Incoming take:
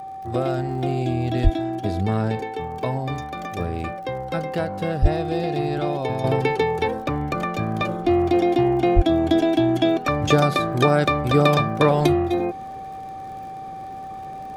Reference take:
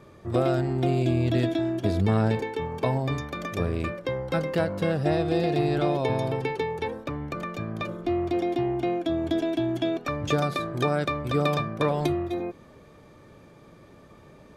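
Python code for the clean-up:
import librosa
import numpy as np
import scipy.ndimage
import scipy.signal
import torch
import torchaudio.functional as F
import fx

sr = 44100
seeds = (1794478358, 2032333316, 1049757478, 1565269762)

y = fx.fix_declick_ar(x, sr, threshold=6.5)
y = fx.notch(y, sr, hz=770.0, q=30.0)
y = fx.highpass(y, sr, hz=140.0, slope=24, at=(1.43, 1.55), fade=0.02)
y = fx.highpass(y, sr, hz=140.0, slope=24, at=(5.01, 5.13), fade=0.02)
y = fx.highpass(y, sr, hz=140.0, slope=24, at=(8.95, 9.07), fade=0.02)
y = fx.fix_level(y, sr, at_s=6.24, step_db=-7.5)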